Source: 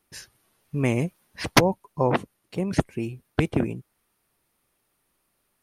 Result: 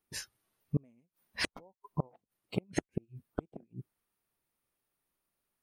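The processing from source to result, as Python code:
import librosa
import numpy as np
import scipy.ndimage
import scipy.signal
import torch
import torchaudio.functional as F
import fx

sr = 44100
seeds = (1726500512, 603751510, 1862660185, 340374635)

y = fx.gate_flip(x, sr, shuts_db=-19.0, range_db=-36)
y = fx.noise_reduce_blind(y, sr, reduce_db=14)
y = y * 10.0 ** (1.0 / 20.0)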